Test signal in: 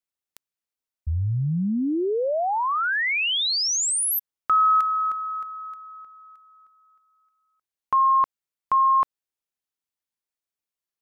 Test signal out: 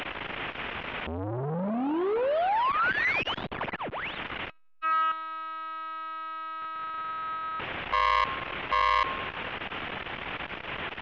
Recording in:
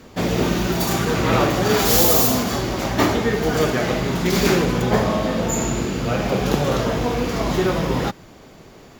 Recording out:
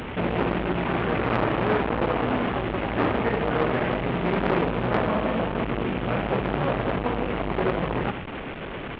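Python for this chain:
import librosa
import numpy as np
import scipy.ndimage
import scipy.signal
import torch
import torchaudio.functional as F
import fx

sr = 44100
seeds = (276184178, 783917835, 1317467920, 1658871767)

y = fx.delta_mod(x, sr, bps=16000, step_db=-26.0)
y = fx.echo_feedback(y, sr, ms=101, feedback_pct=56, wet_db=-19)
y = fx.transformer_sat(y, sr, knee_hz=1200.0)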